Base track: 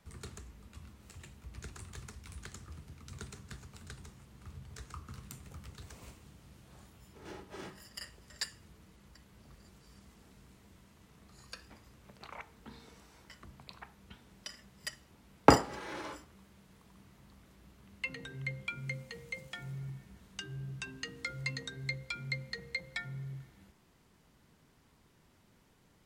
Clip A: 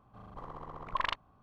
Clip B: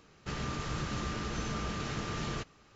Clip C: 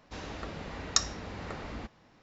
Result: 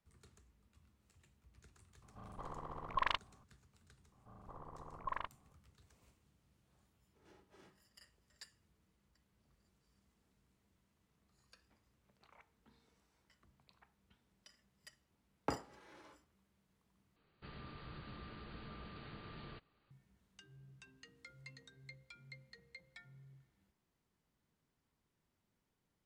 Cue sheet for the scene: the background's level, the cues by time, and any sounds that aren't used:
base track -18 dB
2.02 add A -2.5 dB
4.12 add A -7.5 dB + LPF 1600 Hz
17.16 replace with B -15.5 dB + brick-wall FIR low-pass 4800 Hz
not used: C

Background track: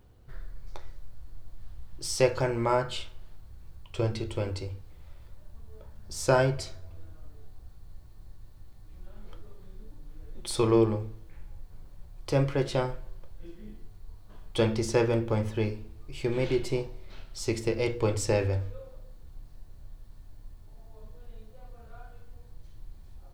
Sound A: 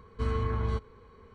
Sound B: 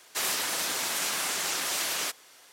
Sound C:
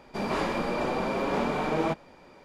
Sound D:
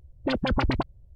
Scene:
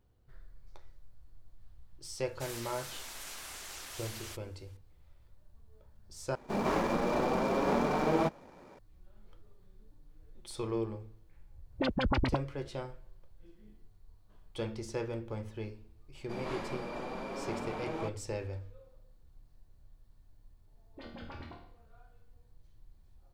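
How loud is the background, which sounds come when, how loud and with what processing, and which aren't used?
background track -12 dB
2.25 add B -15.5 dB
6.35 replace with C -1 dB + median filter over 15 samples
11.54 add D -5 dB
16.15 add C -11.5 dB
20.71 add D -5 dB + resonator bank D#2 minor, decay 0.62 s
not used: A

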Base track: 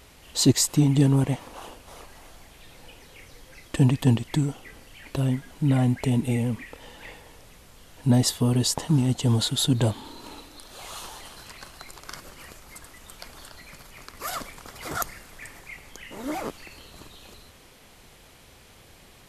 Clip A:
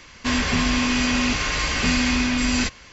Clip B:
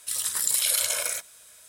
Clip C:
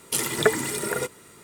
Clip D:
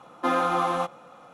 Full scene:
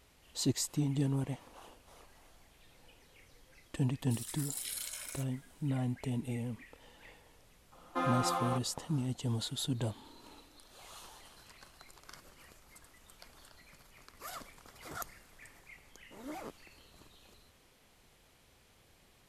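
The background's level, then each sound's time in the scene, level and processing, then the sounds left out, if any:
base track -13 dB
4.03 add B -16.5 dB + HPF 870 Hz
7.72 add D -9.5 dB
not used: A, C

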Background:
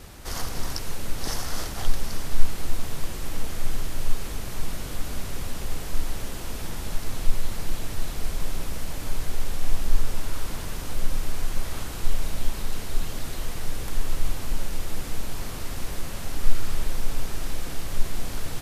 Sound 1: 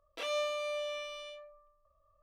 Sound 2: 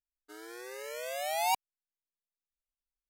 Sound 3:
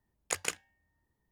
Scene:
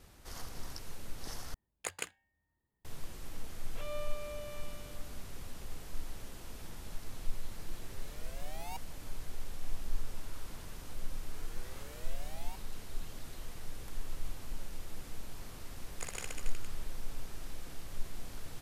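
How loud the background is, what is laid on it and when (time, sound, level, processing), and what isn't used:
background -14 dB
1.54 replace with 3 -5.5 dB + bell 5600 Hz -12 dB 0.23 oct
3.58 add 1 -7 dB + air absorption 330 m
7.22 add 2 -16.5 dB
11.01 add 2 -11.5 dB + compressor, threshold -39 dBFS
15.7 add 3 -11.5 dB + reverse bouncing-ball echo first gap 60 ms, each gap 1.1×, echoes 6, each echo -2 dB

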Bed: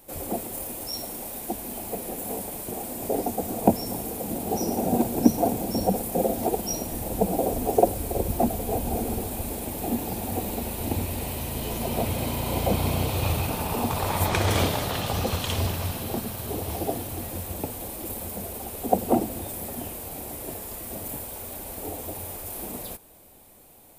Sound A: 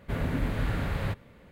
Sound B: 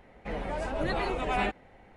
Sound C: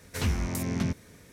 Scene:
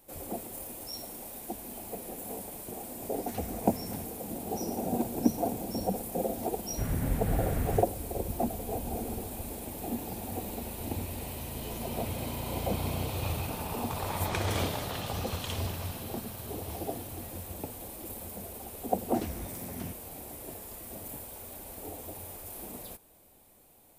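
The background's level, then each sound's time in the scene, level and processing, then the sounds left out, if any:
bed -7.5 dB
3.13 add C -14.5 dB
6.69 add A -7.5 dB + tone controls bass +7 dB, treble -4 dB
19 add C -13 dB
not used: B

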